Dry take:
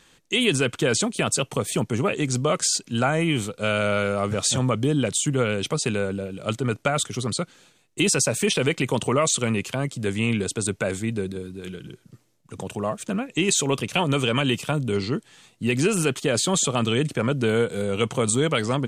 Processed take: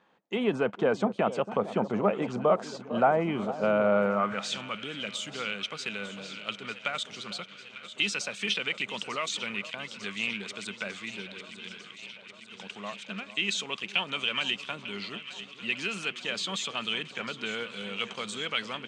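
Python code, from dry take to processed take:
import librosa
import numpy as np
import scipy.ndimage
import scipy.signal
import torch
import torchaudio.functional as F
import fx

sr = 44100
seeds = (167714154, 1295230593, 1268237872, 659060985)

p1 = scipy.signal.sosfilt(scipy.signal.butter(2, 5100.0, 'lowpass', fs=sr, output='sos'), x)
p2 = fx.peak_eq(p1, sr, hz=200.0, db=13.0, octaves=0.35)
p3 = fx.echo_alternate(p2, sr, ms=449, hz=1100.0, feedback_pct=84, wet_db=-13)
p4 = np.sign(p3) * np.maximum(np.abs(p3) - 10.0 ** (-36.5 / 20.0), 0.0)
p5 = p3 + (p4 * 10.0 ** (-5.0 / 20.0))
p6 = fx.filter_sweep_bandpass(p5, sr, from_hz=770.0, to_hz=3100.0, start_s=4.03, end_s=4.56, q=1.6)
y = fx.dynamic_eq(p6, sr, hz=3500.0, q=0.9, threshold_db=-39.0, ratio=4.0, max_db=-5)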